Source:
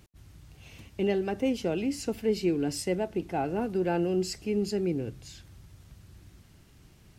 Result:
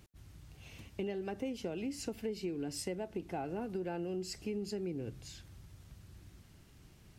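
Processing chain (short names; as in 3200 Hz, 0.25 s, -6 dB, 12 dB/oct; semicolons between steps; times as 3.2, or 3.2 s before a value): compressor 6:1, threshold -32 dBFS, peak gain reduction 10.5 dB; gain -3 dB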